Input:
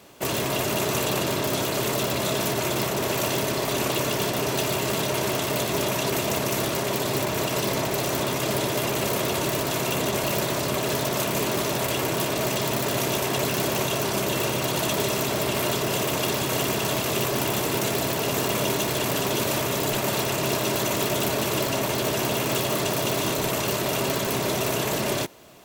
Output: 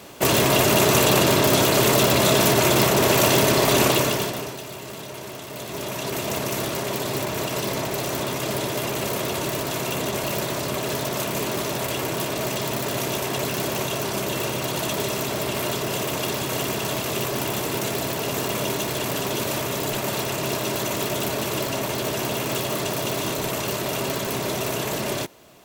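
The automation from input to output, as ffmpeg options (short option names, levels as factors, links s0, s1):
-af "volume=7.08,afade=t=out:st=3.82:d=0.48:silence=0.334965,afade=t=out:st=4.3:d=0.28:silence=0.375837,afade=t=in:st=5.49:d=0.87:silence=0.334965"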